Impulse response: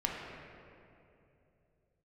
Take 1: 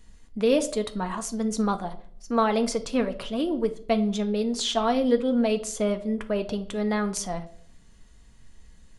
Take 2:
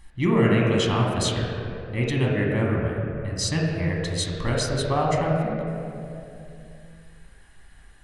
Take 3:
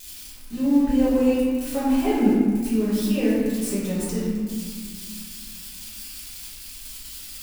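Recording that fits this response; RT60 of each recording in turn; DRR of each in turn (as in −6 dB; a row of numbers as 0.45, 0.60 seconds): 2; 0.55, 2.8, 1.8 seconds; 6.5, −3.0, −10.0 decibels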